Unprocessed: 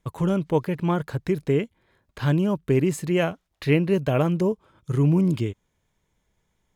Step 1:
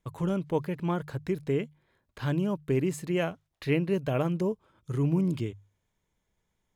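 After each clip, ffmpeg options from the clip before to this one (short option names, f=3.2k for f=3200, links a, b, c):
-af "bandreject=f=50:t=h:w=6,bandreject=f=100:t=h:w=6,bandreject=f=150:t=h:w=6,volume=-6dB"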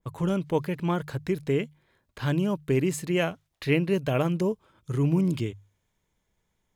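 -af "adynamicequalizer=threshold=0.00794:dfrequency=1700:dqfactor=0.7:tfrequency=1700:tqfactor=0.7:attack=5:release=100:ratio=0.375:range=2:mode=boostabove:tftype=highshelf,volume=2.5dB"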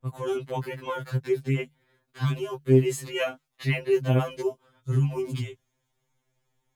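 -af "afftfilt=real='re*2.45*eq(mod(b,6),0)':imag='im*2.45*eq(mod(b,6),0)':win_size=2048:overlap=0.75,volume=2dB"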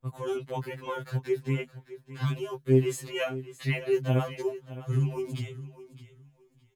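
-af "aecho=1:1:613|1226:0.168|0.0353,volume=-3dB"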